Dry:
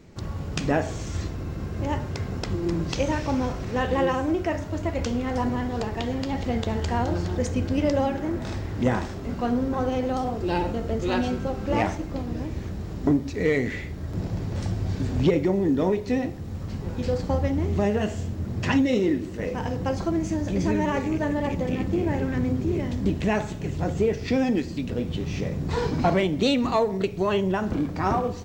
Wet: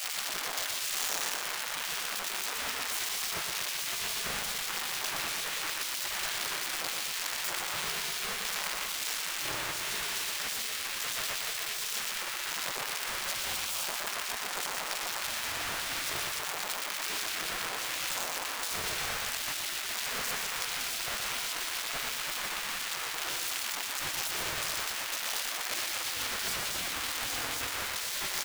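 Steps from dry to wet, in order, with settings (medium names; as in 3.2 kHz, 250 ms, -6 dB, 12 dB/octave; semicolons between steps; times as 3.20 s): one-bit comparator; spectral gate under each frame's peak -20 dB weak; loudspeakers at several distances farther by 41 m -5 dB, 84 m -10 dB; trim -1 dB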